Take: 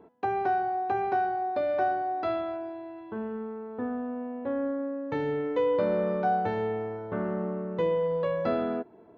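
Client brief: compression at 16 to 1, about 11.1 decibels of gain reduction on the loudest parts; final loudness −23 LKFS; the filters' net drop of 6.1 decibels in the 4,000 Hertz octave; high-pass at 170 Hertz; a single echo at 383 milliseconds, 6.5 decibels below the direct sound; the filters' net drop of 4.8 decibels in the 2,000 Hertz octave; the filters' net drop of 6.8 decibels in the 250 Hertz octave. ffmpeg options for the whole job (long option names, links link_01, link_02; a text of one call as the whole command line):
ffmpeg -i in.wav -af "highpass=170,equalizer=frequency=250:width_type=o:gain=-7.5,equalizer=frequency=2000:width_type=o:gain=-6,equalizer=frequency=4000:width_type=o:gain=-5.5,acompressor=threshold=-35dB:ratio=16,aecho=1:1:383:0.473,volume=16dB" out.wav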